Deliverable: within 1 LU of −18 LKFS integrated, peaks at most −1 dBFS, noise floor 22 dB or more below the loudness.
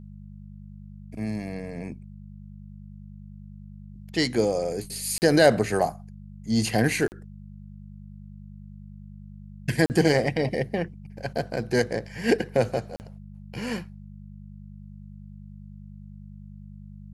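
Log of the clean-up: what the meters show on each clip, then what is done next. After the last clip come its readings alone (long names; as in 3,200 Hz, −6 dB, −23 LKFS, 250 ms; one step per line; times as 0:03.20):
number of dropouts 4; longest dropout 39 ms; mains hum 50 Hz; hum harmonics up to 200 Hz; level of the hum −41 dBFS; integrated loudness −25.5 LKFS; sample peak −6.0 dBFS; target loudness −18.0 LKFS
→ repair the gap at 0:05.18/0:07.08/0:09.86/0:12.96, 39 ms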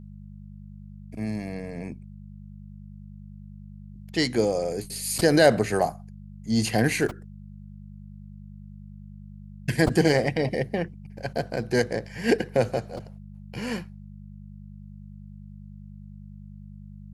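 number of dropouts 0; mains hum 50 Hz; hum harmonics up to 200 Hz; level of the hum −41 dBFS
→ hum removal 50 Hz, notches 4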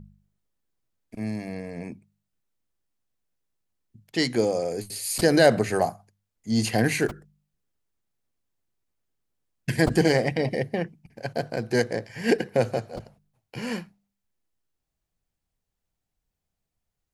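mains hum none found; integrated loudness −25.5 LKFS; sample peak −6.0 dBFS; target loudness −18.0 LKFS
→ level +7.5 dB
brickwall limiter −1 dBFS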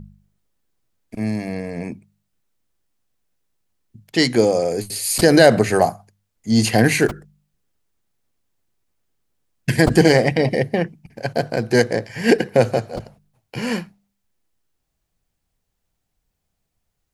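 integrated loudness −18.5 LKFS; sample peak −1.0 dBFS; background noise floor −76 dBFS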